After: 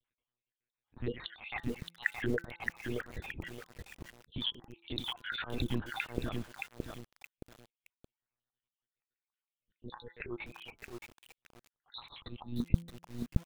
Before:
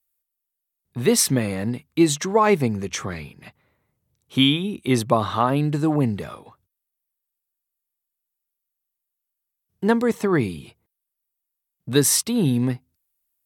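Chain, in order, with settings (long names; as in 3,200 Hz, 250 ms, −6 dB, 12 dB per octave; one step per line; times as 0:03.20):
time-frequency cells dropped at random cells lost 62%
0:01.00–0:01.40: high-shelf EQ 2,600 Hz −7.5 dB
brickwall limiter −17 dBFS, peak gain reduction 11 dB
downward compressor 10 to 1, threshold −33 dBFS, peak gain reduction 13 dB
volume swells 172 ms
one-pitch LPC vocoder at 8 kHz 120 Hz
hum removal 169.6 Hz, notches 9
feedback echo at a low word length 621 ms, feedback 35%, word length 9 bits, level −3.5 dB
level +4 dB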